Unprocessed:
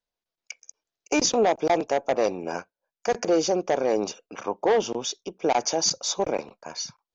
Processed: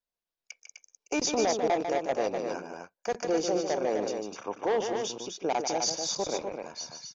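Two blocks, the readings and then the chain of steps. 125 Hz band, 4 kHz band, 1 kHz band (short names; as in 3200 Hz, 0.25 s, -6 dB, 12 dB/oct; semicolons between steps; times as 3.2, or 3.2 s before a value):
-5.0 dB, -5.0 dB, -4.5 dB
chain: tapped delay 0.148/0.253 s -7/-5.5 dB; gain -6.5 dB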